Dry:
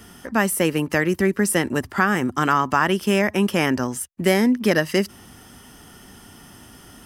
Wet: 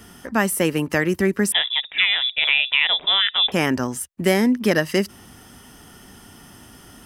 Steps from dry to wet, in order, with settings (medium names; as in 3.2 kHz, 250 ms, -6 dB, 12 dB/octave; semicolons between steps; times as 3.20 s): 1.52–3.52 s: frequency inversion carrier 3.7 kHz